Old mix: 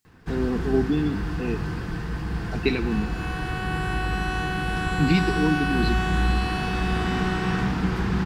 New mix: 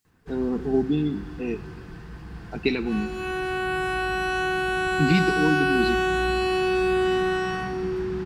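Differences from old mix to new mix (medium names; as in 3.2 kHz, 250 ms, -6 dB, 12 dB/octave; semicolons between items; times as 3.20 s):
first sound -10.5 dB; second sound: send +8.5 dB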